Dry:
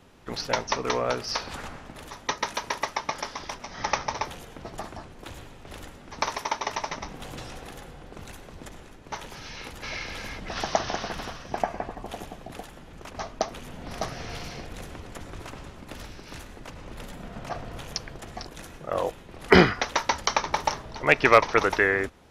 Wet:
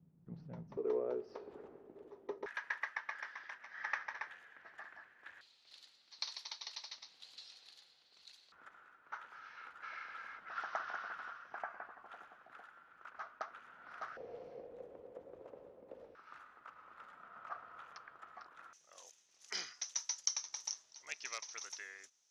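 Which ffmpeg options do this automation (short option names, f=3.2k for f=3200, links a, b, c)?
-af "asetnsamples=n=441:p=0,asendcmd='0.77 bandpass f 400;2.46 bandpass f 1700;5.41 bandpass f 4300;8.52 bandpass f 1400;14.17 bandpass f 500;16.15 bandpass f 1300;18.73 bandpass f 6100',bandpass=f=160:t=q:w=6.8:csg=0"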